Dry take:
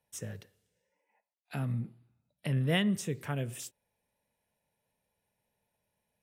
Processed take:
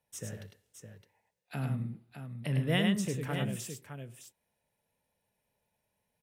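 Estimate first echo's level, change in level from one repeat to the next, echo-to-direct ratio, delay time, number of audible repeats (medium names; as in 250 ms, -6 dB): -18.0 dB, no regular repeats, -3.0 dB, 61 ms, 3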